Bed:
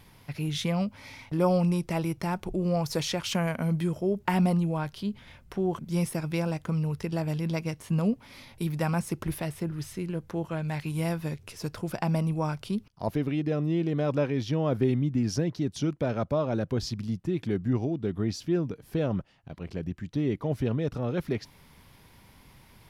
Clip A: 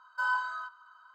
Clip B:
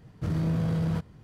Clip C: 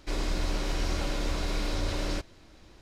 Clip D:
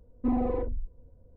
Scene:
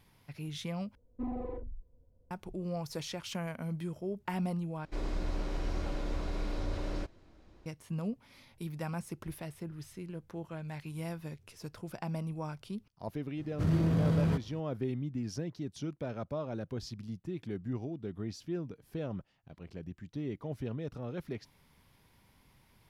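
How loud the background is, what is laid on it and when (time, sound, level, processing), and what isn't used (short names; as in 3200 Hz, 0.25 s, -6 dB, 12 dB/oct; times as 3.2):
bed -10 dB
0.95 replace with D -10.5 dB
4.85 replace with C -4.5 dB + high shelf 2000 Hz -11.5 dB
13.37 add B -1 dB
not used: A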